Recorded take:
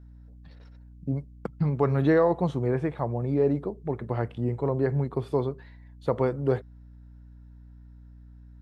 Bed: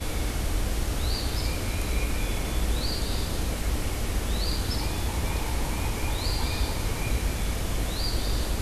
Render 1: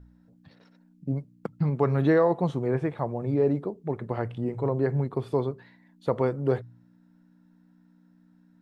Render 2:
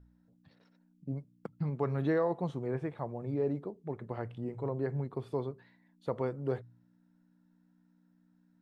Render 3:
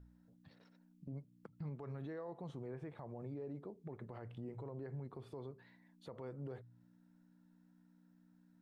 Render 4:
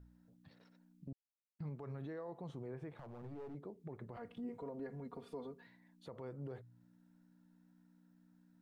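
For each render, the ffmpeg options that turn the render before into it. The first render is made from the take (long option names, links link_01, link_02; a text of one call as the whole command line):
ffmpeg -i in.wav -af "bandreject=frequency=60:width_type=h:width=4,bandreject=frequency=120:width_type=h:width=4" out.wav
ffmpeg -i in.wav -af "volume=-8.5dB" out.wav
ffmpeg -i in.wav -af "acompressor=threshold=-45dB:ratio=2,alimiter=level_in=14dB:limit=-24dB:level=0:latency=1:release=46,volume=-14dB" out.wav
ffmpeg -i in.wav -filter_complex "[0:a]asettb=1/sr,asplit=3[link_01][link_02][link_03];[link_01]atrim=end=2.904[link_04];[link_02]atrim=start=2.9:end=3.55,asetpts=PTS-STARTPTS,afade=type=in:duration=0.004:curve=qsin,afade=type=out:start_time=0.646:duration=0.004:curve=qsin,aeval=exprs='clip(val(0),-1,0.00335)':channel_layout=same[link_05];[link_03]atrim=start=3.546[link_06];[link_04][link_05]acrossfade=duration=0.004:curve1=hsin:curve2=qsin[link_07];[link_07][link_06]acrossfade=duration=0.004:curve1=qsin:curve2=hsin,asettb=1/sr,asplit=3[link_08][link_09][link_10];[link_08]atrim=end=4.164[link_11];[link_09]atrim=start=4.16:end=5.67,asetpts=PTS-STARTPTS,afade=type=in:duration=0.004:curve=qsin,afade=type=out:start_time=1.506:duration=0.004:curve=qsin,aecho=1:1:4.2:0.97,atrim=end_sample=66591[link_12];[link_10]atrim=start=5.666[link_13];[link_11][link_12]acrossfade=duration=0.004:curve1=hsin:curve2=qsin[link_14];[link_14][link_13]acrossfade=duration=0.004:curve1=qsin:curve2=hsin,asplit=3[link_15][link_16][link_17];[link_15]atrim=end=1.13,asetpts=PTS-STARTPTS,afade=type=out:start_time=1.126:duration=0.004:curve=hsin[link_18];[link_16]atrim=start=1.13:end=1.59,asetpts=PTS-STARTPTS,volume=0[link_19];[link_17]atrim=start=1.59,asetpts=PTS-STARTPTS,afade=type=in:duration=0.004:curve=hsin[link_20];[link_18][link_19][link_20]concat=n=3:v=0:a=1" out.wav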